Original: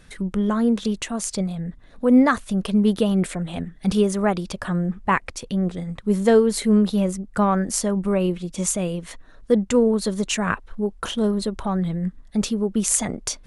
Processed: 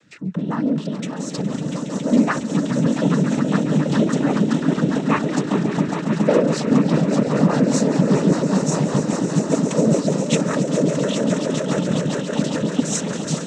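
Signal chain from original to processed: echo with a slow build-up 138 ms, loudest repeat 8, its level -9 dB; rotary cabinet horn 5 Hz; noise-vocoded speech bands 12

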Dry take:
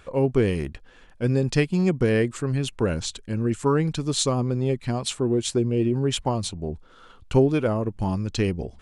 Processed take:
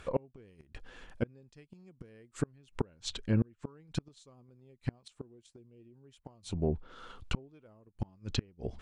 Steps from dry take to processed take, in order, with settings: inverted gate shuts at -17 dBFS, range -35 dB; low-pass that closes with the level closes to 2.4 kHz, closed at -29 dBFS

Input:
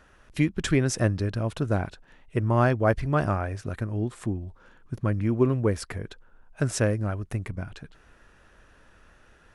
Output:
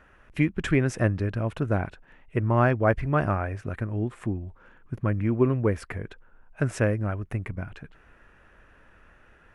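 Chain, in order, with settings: resonant high shelf 3.2 kHz -8 dB, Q 1.5

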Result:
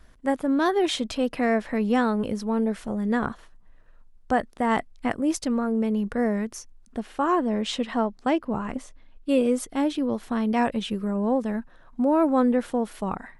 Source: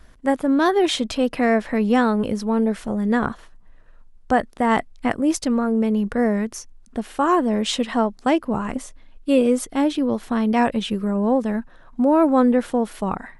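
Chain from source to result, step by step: 7.01–9.29 s: treble shelf 8.7 kHz -11.5 dB; trim -4.5 dB

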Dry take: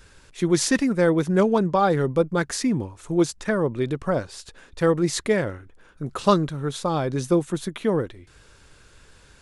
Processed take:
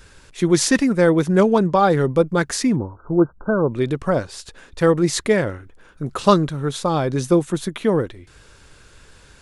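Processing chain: 2.76–3.70 s: brick-wall FIR low-pass 1.6 kHz; trim +4 dB

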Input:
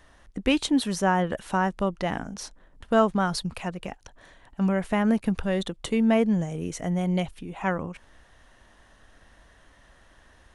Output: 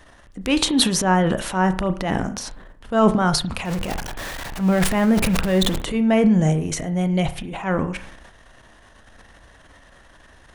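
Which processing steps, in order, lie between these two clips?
3.65–5.82 s: jump at every zero crossing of -31.5 dBFS; transient shaper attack -8 dB, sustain +10 dB; on a send: reverberation RT60 0.50 s, pre-delay 32 ms, DRR 10 dB; on the sum: trim +5 dB

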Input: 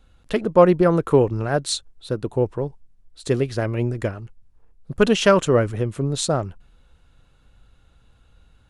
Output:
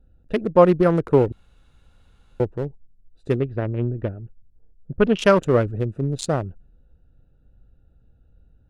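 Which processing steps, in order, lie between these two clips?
local Wiener filter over 41 samples; 1.32–2.40 s: room tone; 3.36–5.19 s: distance through air 260 m

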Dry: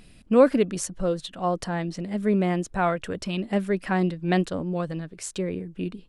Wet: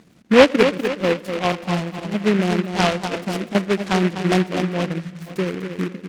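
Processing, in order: 1.52–2.14 s: comb filter that takes the minimum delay 1 ms; treble shelf 3 kHz -8 dB; feedback delay 247 ms, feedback 45%, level -7 dB; transient shaper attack +3 dB, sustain -6 dB; 5.00–5.26 s: spectral selection erased 210–1600 Hz; on a send at -18 dB: reverberation RT60 2.1 s, pre-delay 6 ms; 2.95–3.55 s: on the sum: compressor with a negative ratio -27 dBFS, ratio -0.5; high-pass 150 Hz 12 dB/octave; distance through air 180 m; delay time shaken by noise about 1.7 kHz, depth 0.12 ms; trim +5 dB

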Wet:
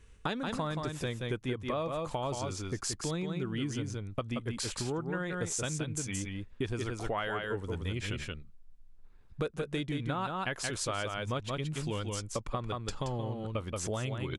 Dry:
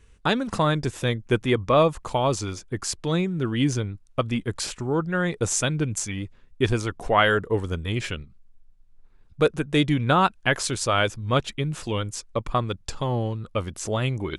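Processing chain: delay 176 ms -5.5 dB; compression 6:1, threshold -29 dBFS, peak gain reduction 14.5 dB; trim -2.5 dB

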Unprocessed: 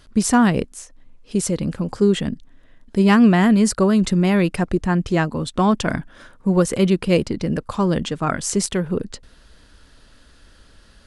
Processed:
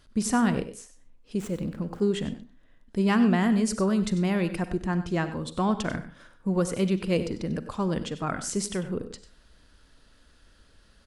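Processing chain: 1.39–2.00 s: median filter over 9 samples; delay 96 ms -14 dB; on a send at -13 dB: reverberation, pre-delay 37 ms; on the sum: trim -8.5 dB

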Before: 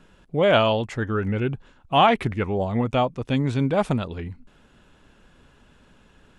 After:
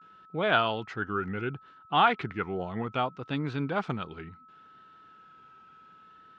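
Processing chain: vibrato 0.67 Hz 97 cents; whistle 1.3 kHz -52 dBFS; cabinet simulation 150–5100 Hz, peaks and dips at 240 Hz -5 dB, 570 Hz -8 dB, 1.4 kHz +8 dB; trim -6 dB

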